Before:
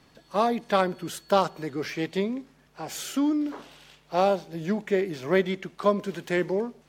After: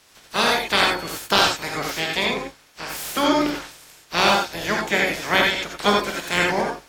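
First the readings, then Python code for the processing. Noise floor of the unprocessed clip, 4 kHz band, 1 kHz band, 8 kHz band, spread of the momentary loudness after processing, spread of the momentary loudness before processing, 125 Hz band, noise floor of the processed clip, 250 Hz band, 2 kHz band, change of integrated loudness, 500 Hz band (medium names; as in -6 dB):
-60 dBFS, +17.0 dB, +6.5 dB, +11.0 dB, 11 LU, 9 LU, +1.0 dB, -54 dBFS, +0.5 dB, +14.0 dB, +6.5 dB, +1.0 dB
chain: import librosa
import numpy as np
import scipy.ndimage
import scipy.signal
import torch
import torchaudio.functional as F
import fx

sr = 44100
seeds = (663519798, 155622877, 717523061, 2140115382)

y = fx.spec_clip(x, sr, under_db=26)
y = fx.rev_gated(y, sr, seeds[0], gate_ms=110, shape='rising', drr_db=0.0)
y = y * librosa.db_to_amplitude(2.5)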